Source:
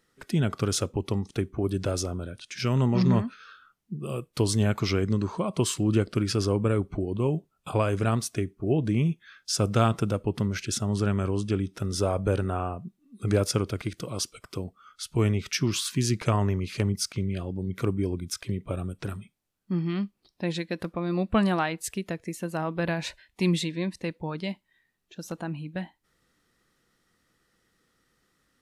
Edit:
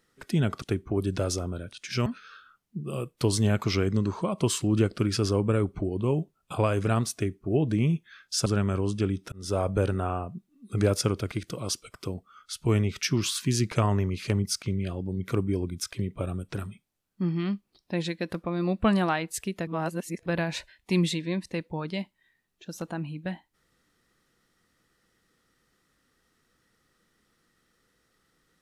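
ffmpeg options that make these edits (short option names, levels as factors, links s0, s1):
-filter_complex "[0:a]asplit=7[s0][s1][s2][s3][s4][s5][s6];[s0]atrim=end=0.622[s7];[s1]atrim=start=1.288:end=2.732[s8];[s2]atrim=start=3.218:end=9.622[s9];[s3]atrim=start=10.958:end=11.82,asetpts=PTS-STARTPTS,afade=t=out:st=0.858:d=0.004:c=hsin[s10];[s4]atrim=start=11.82:end=22.172,asetpts=PTS-STARTPTS,afade=t=in:d=0.28[s11];[s5]atrim=start=22.168:end=22.762,asetpts=PTS-STARTPTS,areverse[s12];[s6]atrim=start=22.758[s13];[s7][s8]acrossfade=d=0.004:c1=hsin:c2=hsin[s14];[s14][s9]acrossfade=d=0.004:c1=hsin:c2=hsin[s15];[s10][s11]concat=n=2:v=0:a=1[s16];[s15][s16]acrossfade=d=0.004:c1=hsin:c2=hsin[s17];[s17][s12]acrossfade=d=0.004:c1=hsin:c2=hsin[s18];[s18][s13]acrossfade=d=0.004:c1=hsin:c2=hsin"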